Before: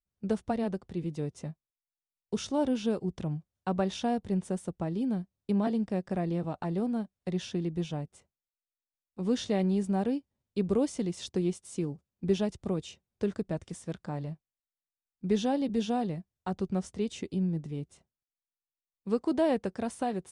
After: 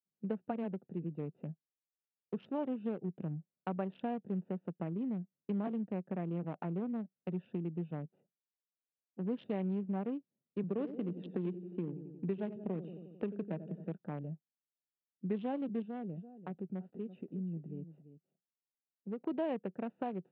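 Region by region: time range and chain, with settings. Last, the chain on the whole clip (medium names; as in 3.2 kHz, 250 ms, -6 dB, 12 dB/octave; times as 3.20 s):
10.63–13.94 s: feedback delay 89 ms, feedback 57%, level -11.5 dB + three bands compressed up and down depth 40%
15.82–19.21 s: compression 1.5:1, threshold -43 dBFS + delay 339 ms -13.5 dB
whole clip: local Wiener filter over 41 samples; elliptic band-pass 160–2900 Hz, stop band 40 dB; compression 2:1, threshold -36 dBFS; trim -1 dB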